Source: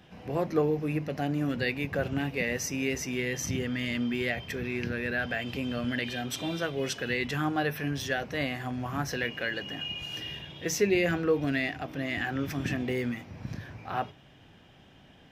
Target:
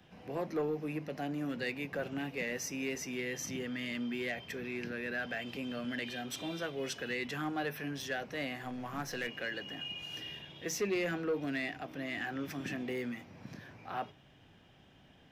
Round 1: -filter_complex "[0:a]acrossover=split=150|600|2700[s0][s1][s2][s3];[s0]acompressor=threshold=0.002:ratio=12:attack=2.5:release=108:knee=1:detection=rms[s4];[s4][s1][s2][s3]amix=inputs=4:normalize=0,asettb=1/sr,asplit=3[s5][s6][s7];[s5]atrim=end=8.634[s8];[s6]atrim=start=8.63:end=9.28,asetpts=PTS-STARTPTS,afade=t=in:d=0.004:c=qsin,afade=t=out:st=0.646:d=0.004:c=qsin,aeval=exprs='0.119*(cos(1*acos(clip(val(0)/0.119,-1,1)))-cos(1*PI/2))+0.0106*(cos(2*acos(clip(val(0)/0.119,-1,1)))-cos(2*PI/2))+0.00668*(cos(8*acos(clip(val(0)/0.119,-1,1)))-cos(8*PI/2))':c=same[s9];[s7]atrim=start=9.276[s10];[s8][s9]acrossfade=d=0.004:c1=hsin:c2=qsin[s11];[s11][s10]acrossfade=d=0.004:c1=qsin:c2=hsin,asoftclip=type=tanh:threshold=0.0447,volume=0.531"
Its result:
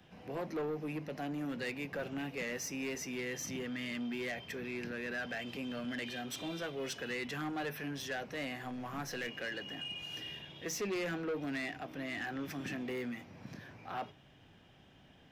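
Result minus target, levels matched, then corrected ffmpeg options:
saturation: distortion +7 dB
-filter_complex "[0:a]acrossover=split=150|600|2700[s0][s1][s2][s3];[s0]acompressor=threshold=0.002:ratio=12:attack=2.5:release=108:knee=1:detection=rms[s4];[s4][s1][s2][s3]amix=inputs=4:normalize=0,asettb=1/sr,asplit=3[s5][s6][s7];[s5]atrim=end=8.634[s8];[s6]atrim=start=8.63:end=9.28,asetpts=PTS-STARTPTS,afade=t=in:d=0.004:c=qsin,afade=t=out:st=0.646:d=0.004:c=qsin,aeval=exprs='0.119*(cos(1*acos(clip(val(0)/0.119,-1,1)))-cos(1*PI/2))+0.0106*(cos(2*acos(clip(val(0)/0.119,-1,1)))-cos(2*PI/2))+0.00668*(cos(8*acos(clip(val(0)/0.119,-1,1)))-cos(8*PI/2))':c=same[s9];[s7]atrim=start=9.276[s10];[s8][s9]acrossfade=d=0.004:c1=hsin:c2=qsin[s11];[s11][s10]acrossfade=d=0.004:c1=qsin:c2=hsin,asoftclip=type=tanh:threshold=0.0944,volume=0.531"

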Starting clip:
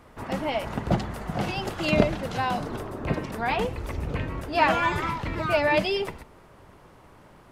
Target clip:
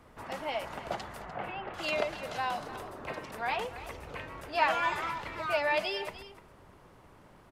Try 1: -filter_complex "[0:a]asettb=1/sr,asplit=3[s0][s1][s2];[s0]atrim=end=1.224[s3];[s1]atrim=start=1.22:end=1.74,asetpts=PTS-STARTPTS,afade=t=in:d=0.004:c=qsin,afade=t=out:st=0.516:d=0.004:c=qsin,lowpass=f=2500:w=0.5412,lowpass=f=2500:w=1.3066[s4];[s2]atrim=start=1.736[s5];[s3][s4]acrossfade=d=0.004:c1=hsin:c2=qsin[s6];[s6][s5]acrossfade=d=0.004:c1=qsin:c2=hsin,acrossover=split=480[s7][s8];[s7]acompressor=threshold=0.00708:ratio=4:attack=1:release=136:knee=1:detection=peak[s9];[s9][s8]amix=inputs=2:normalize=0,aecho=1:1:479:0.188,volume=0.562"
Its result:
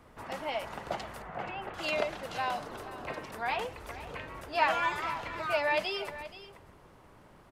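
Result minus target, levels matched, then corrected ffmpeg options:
echo 181 ms late
-filter_complex "[0:a]asettb=1/sr,asplit=3[s0][s1][s2];[s0]atrim=end=1.224[s3];[s1]atrim=start=1.22:end=1.74,asetpts=PTS-STARTPTS,afade=t=in:d=0.004:c=qsin,afade=t=out:st=0.516:d=0.004:c=qsin,lowpass=f=2500:w=0.5412,lowpass=f=2500:w=1.3066[s4];[s2]atrim=start=1.736[s5];[s3][s4]acrossfade=d=0.004:c1=hsin:c2=qsin[s6];[s6][s5]acrossfade=d=0.004:c1=qsin:c2=hsin,acrossover=split=480[s7][s8];[s7]acompressor=threshold=0.00708:ratio=4:attack=1:release=136:knee=1:detection=peak[s9];[s9][s8]amix=inputs=2:normalize=0,aecho=1:1:298:0.188,volume=0.562"

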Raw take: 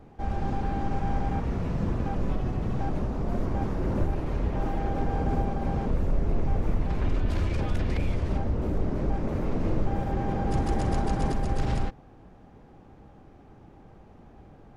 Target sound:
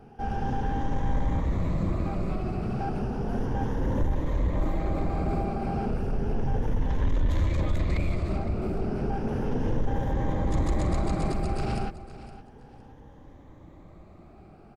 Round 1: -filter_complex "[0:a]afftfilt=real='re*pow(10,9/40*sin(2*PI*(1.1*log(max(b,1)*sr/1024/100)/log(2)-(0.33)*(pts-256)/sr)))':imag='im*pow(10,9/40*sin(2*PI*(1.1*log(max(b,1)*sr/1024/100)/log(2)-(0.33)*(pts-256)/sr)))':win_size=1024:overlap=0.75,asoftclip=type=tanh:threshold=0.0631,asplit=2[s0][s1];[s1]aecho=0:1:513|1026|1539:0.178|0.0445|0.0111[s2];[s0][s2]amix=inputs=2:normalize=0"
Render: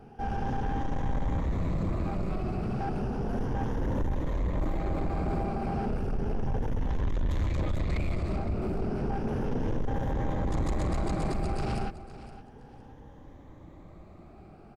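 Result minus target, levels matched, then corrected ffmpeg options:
saturation: distortion +9 dB
-filter_complex "[0:a]afftfilt=real='re*pow(10,9/40*sin(2*PI*(1.1*log(max(b,1)*sr/1024/100)/log(2)-(0.33)*(pts-256)/sr)))':imag='im*pow(10,9/40*sin(2*PI*(1.1*log(max(b,1)*sr/1024/100)/log(2)-(0.33)*(pts-256)/sr)))':win_size=1024:overlap=0.75,asoftclip=type=tanh:threshold=0.15,asplit=2[s0][s1];[s1]aecho=0:1:513|1026|1539:0.178|0.0445|0.0111[s2];[s0][s2]amix=inputs=2:normalize=0"

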